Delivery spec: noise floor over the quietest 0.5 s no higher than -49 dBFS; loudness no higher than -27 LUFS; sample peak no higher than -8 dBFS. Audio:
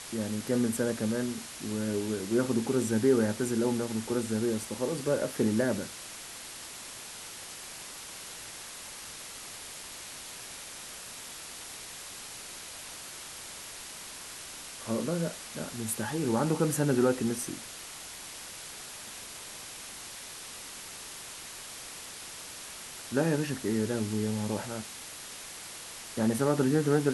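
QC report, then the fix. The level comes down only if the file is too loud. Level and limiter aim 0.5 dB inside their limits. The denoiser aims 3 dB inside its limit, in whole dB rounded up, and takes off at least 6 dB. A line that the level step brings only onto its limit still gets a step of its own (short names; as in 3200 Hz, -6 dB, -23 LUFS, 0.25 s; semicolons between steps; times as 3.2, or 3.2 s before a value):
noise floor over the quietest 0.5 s -44 dBFS: fail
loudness -33.0 LUFS: OK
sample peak -13.0 dBFS: OK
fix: denoiser 8 dB, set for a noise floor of -44 dBFS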